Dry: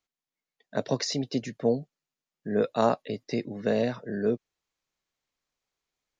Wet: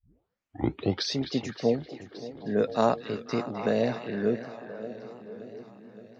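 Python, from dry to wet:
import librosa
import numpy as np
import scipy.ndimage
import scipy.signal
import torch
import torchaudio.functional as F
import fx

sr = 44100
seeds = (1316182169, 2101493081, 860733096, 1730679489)

y = fx.tape_start_head(x, sr, length_s=1.21)
y = fx.echo_stepped(y, sr, ms=257, hz=2600.0, octaves=-0.7, feedback_pct=70, wet_db=-4.5)
y = fx.echo_warbled(y, sr, ms=571, feedback_pct=62, rate_hz=2.8, cents=78, wet_db=-16)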